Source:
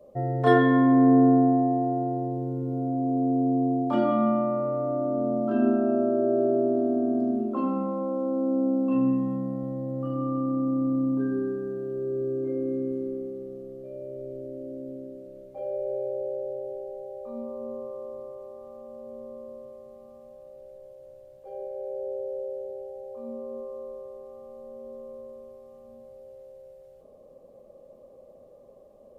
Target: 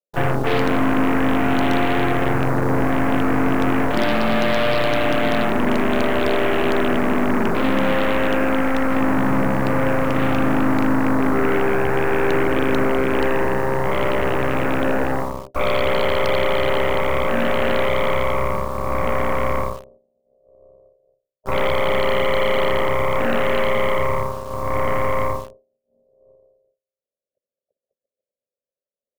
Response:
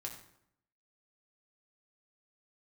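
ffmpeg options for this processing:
-filter_complex "[0:a]agate=range=-58dB:threshold=-43dB:ratio=16:detection=peak,equalizer=f=125:t=o:w=1:g=8,equalizer=f=250:t=o:w=1:g=5,equalizer=f=500:t=o:w=1:g=10,equalizer=f=1k:t=o:w=1:g=4,equalizer=f=2k:t=o:w=1:g=-8,areverse,acompressor=threshold=-24dB:ratio=16,areverse,asplit=3[a][b][c];[b]asetrate=35002,aresample=44100,atempo=1.25992,volume=-12dB[d];[c]asetrate=52444,aresample=44100,atempo=0.840896,volume=-11dB[e];[a][d][e]amix=inputs=3:normalize=0,aeval=exprs='0.133*(cos(1*acos(clip(val(0)/0.133,-1,1)))-cos(1*PI/2))+0.00531*(cos(6*acos(clip(val(0)/0.133,-1,1)))-cos(6*PI/2))+0.0531*(cos(8*acos(clip(val(0)/0.133,-1,1)))-cos(8*PI/2))':c=same,acrossover=split=830[f][g];[g]acrusher=bits=7:mix=0:aa=0.000001[h];[f][h]amix=inputs=2:normalize=0,volume=5.5dB"

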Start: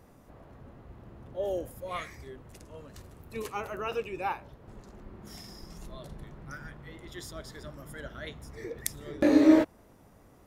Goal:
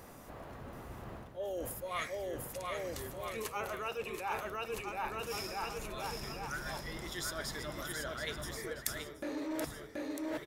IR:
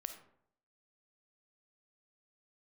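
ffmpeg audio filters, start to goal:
-filter_complex "[0:a]highshelf=f=9.5k:g=4.5,asplit=2[a][b];[b]aecho=0:1:730|1314|1781|2155|2454:0.631|0.398|0.251|0.158|0.1[c];[a][c]amix=inputs=2:normalize=0,acontrast=67,asoftclip=type=tanh:threshold=-8dB,areverse,acompressor=threshold=-35dB:ratio=8,areverse,lowshelf=f=470:g=-8.5,volume=2.5dB"

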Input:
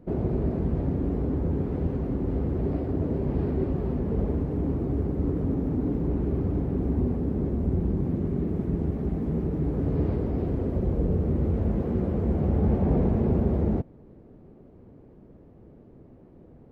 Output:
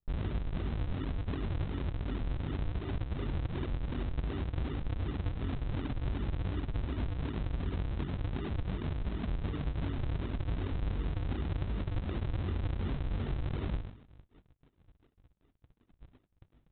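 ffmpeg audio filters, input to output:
-filter_complex "[0:a]aecho=1:1:2.9:0.34,asplit=2[a][b];[b]adelay=64,lowpass=f=2k:p=1,volume=-12dB,asplit=2[c][d];[d]adelay=64,lowpass=f=2k:p=1,volume=0.37,asplit=2[e][f];[f]adelay=64,lowpass=f=2k:p=1,volume=0.37,asplit=2[g][h];[h]adelay=64,lowpass=f=2k:p=1,volume=0.37[i];[c][e][g][i]amix=inputs=4:normalize=0[j];[a][j]amix=inputs=2:normalize=0,flanger=delay=20:depth=2.2:speed=0.43,aresample=8000,acrusher=samples=23:mix=1:aa=0.000001:lfo=1:lforange=36.8:lforate=2.7,aresample=44100,agate=range=-30dB:threshold=-50dB:ratio=16:detection=peak,acompressor=threshold=-28dB:ratio=6,lowshelf=f=230:g=7,volume=-7.5dB"

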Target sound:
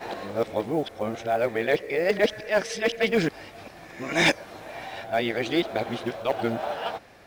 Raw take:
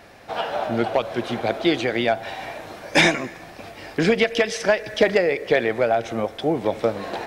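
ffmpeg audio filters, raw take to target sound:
-af "areverse,acrusher=bits=8:mode=log:mix=0:aa=0.000001,volume=-4.5dB"

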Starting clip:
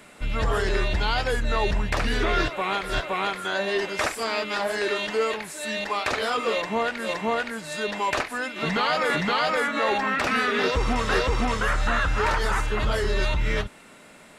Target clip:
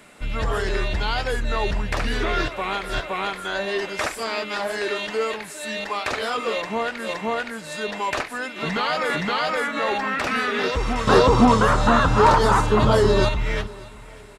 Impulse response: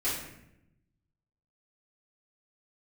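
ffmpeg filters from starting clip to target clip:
-filter_complex "[0:a]asettb=1/sr,asplit=3[a][b][c];[a]atrim=end=11.074[d];[b]atrim=start=11.07:end=13.29,asetpts=PTS-STARTPTS,afade=t=in:d=0.004:c=qsin,afade=t=out:st=2.216:d=0.004:c=qsin,equalizer=f=125:t=o:w=1:g=11,equalizer=f=250:t=o:w=1:g=10,equalizer=f=500:t=o:w=1:g=6,equalizer=f=1k:t=o:w=1:g=11,equalizer=f=2k:t=o:w=1:g=-5,equalizer=f=4k:t=o:w=1:g=5,equalizer=f=8k:t=o:w=1:g=4[e];[c]atrim=start=13.286[f];[d][e]acrossfade=d=0.004:c1=hsin:c2=qsin[g];[g][f]acrossfade=d=0.004:c1=qsin:c2=hsin,aecho=1:1:595|1190|1785:0.0841|0.0294|0.0103"

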